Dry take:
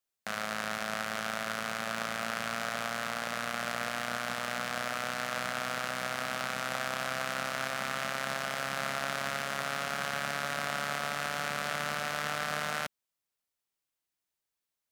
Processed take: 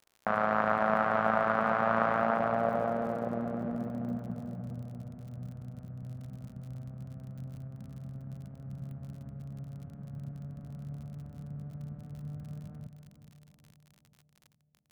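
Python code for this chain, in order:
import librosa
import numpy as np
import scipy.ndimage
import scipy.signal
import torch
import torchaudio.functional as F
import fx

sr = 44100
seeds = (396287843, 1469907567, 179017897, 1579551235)

y = fx.filter_sweep_lowpass(x, sr, from_hz=1000.0, to_hz=110.0, start_s=2.11, end_s=4.96, q=1.5)
y = fx.echo_split(y, sr, split_hz=930.0, low_ms=420, high_ms=167, feedback_pct=52, wet_db=-11.0)
y = fx.dmg_crackle(y, sr, seeds[0], per_s=47.0, level_db=-52.0)
y = y * 10.0 ** (8.0 / 20.0)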